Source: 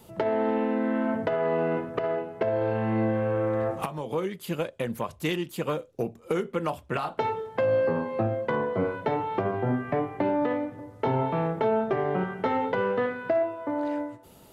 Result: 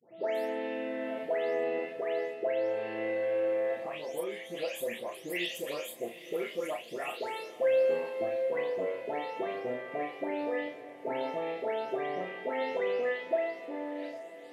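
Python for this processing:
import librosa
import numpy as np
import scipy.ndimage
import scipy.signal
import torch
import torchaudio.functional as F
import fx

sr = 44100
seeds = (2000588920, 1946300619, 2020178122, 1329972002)

y = fx.spec_delay(x, sr, highs='late', ms=348)
y = scipy.signal.sosfilt(scipy.signal.butter(2, 570.0, 'highpass', fs=sr, output='sos'), y)
y = fx.band_shelf(y, sr, hz=1100.0, db=-12.5, octaves=1.0)
y = fx.notch(y, sr, hz=1500.0, q=14.0)
y = fx.doubler(y, sr, ms=34.0, db=-6.5)
y = fx.echo_diffused(y, sr, ms=838, feedback_pct=48, wet_db=-14.5)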